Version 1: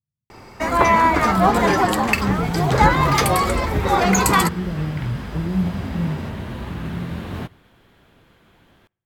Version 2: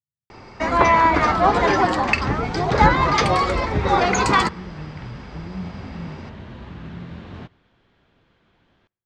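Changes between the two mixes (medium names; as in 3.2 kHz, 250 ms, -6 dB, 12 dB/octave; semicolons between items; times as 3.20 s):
speech -11.0 dB; second sound -7.5 dB; master: add low-pass 5.9 kHz 24 dB/octave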